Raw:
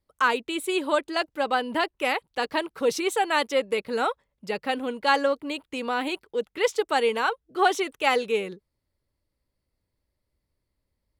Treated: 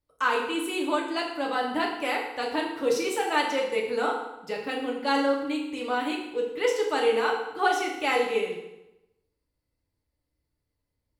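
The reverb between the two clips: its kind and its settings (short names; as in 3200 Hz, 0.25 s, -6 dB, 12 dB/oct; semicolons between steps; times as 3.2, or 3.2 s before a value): FDN reverb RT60 0.92 s, low-frequency decay 1.05×, high-frequency decay 0.85×, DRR -2 dB; gain -6 dB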